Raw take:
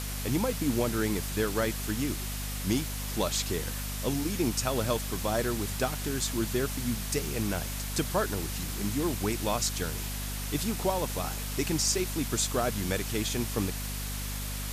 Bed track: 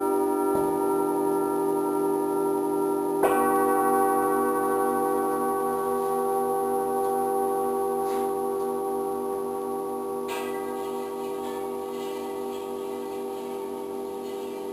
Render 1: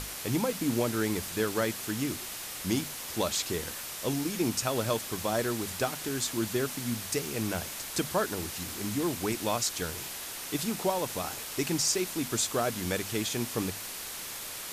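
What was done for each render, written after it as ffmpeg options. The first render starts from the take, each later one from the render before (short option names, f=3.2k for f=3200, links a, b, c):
-af "bandreject=f=50:t=h:w=6,bandreject=f=100:t=h:w=6,bandreject=f=150:t=h:w=6,bandreject=f=200:t=h:w=6,bandreject=f=250:t=h:w=6"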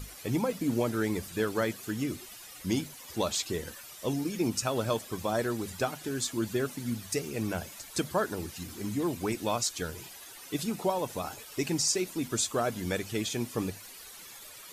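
-af "afftdn=nr=13:nf=-40"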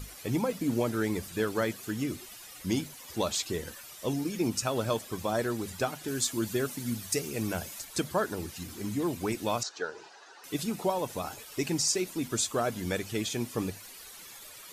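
-filter_complex "[0:a]asettb=1/sr,asplit=3[a][b][c];[a]atrim=end=6.084[d];[b]atrim=start=6.08:end=7.85,asetpts=PTS-STARTPTS,afade=t=in:d=0.004:c=qsin,afade=t=out:st=1.766:d=0.004:c=qsin,highshelf=f=5k:g=5.5[e];[c]atrim=start=7.846[f];[d][e]acrossfade=d=0.004:c1=hsin:c2=qsin[g];[g][f]acrossfade=d=0.004:c1=qsin:c2=hsin,asettb=1/sr,asplit=3[h][i][j];[h]atrim=end=9.634[k];[i]atrim=start=9.63:end=10.44,asetpts=PTS-STARTPTS,afade=t=in:d=0.004:c=qsin,afade=t=out:st=0.806:d=0.004:c=qsin,highpass=420,equalizer=f=430:t=q:w=4:g=6,equalizer=f=840:t=q:w=4:g=6,equalizer=f=1.5k:t=q:w=4:g=6,equalizer=f=2.2k:t=q:w=4:g=-9,equalizer=f=3.3k:t=q:w=4:g=-9,equalizer=f=4.8k:t=q:w=4:g=-3,lowpass=f=5.3k:w=0.5412,lowpass=f=5.3k:w=1.3066[l];[j]atrim=start=10.436[m];[k][l]acrossfade=d=0.004:c1=hsin:c2=qsin[n];[n][m]acrossfade=d=0.004:c1=qsin:c2=hsin"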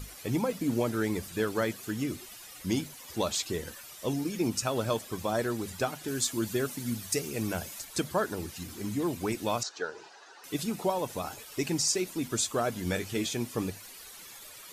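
-filter_complex "[0:a]asettb=1/sr,asplit=3[a][b][c];[a]atrim=end=12.834[d];[b]atrim=start=12.83:end=13.34,asetpts=PTS-STARTPTS,afade=t=in:d=0.004:c=qsin,afade=t=out:st=0.506:d=0.004:c=qsin,asplit=2[e][f];[f]adelay=22,volume=-8dB[g];[e][g]amix=inputs=2:normalize=0,atrim=end_sample=22491[h];[c]atrim=start=13.336[i];[d][h]acrossfade=d=0.004:c1=hsin:c2=qsin[j];[j][i]acrossfade=d=0.004:c1=qsin:c2=hsin"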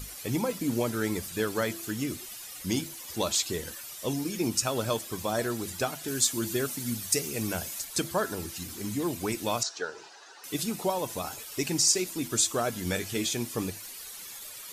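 -af "highshelf=f=3.4k:g=6.5,bandreject=f=335:t=h:w=4,bandreject=f=670:t=h:w=4,bandreject=f=1.005k:t=h:w=4,bandreject=f=1.34k:t=h:w=4,bandreject=f=1.675k:t=h:w=4,bandreject=f=2.01k:t=h:w=4,bandreject=f=2.345k:t=h:w=4,bandreject=f=2.68k:t=h:w=4,bandreject=f=3.015k:t=h:w=4,bandreject=f=3.35k:t=h:w=4,bandreject=f=3.685k:t=h:w=4,bandreject=f=4.02k:t=h:w=4,bandreject=f=4.355k:t=h:w=4,bandreject=f=4.69k:t=h:w=4,bandreject=f=5.025k:t=h:w=4,bandreject=f=5.36k:t=h:w=4,bandreject=f=5.695k:t=h:w=4,bandreject=f=6.03k:t=h:w=4,bandreject=f=6.365k:t=h:w=4,bandreject=f=6.7k:t=h:w=4,bandreject=f=7.035k:t=h:w=4,bandreject=f=7.37k:t=h:w=4,bandreject=f=7.705k:t=h:w=4,bandreject=f=8.04k:t=h:w=4,bandreject=f=8.375k:t=h:w=4,bandreject=f=8.71k:t=h:w=4,bandreject=f=9.045k:t=h:w=4,bandreject=f=9.38k:t=h:w=4,bandreject=f=9.715k:t=h:w=4,bandreject=f=10.05k:t=h:w=4,bandreject=f=10.385k:t=h:w=4"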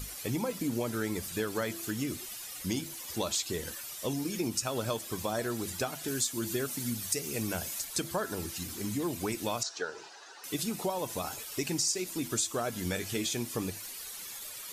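-af "acompressor=threshold=-30dB:ratio=2.5"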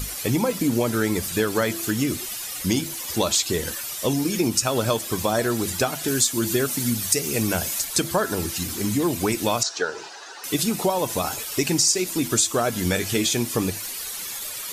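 -af "volume=10.5dB"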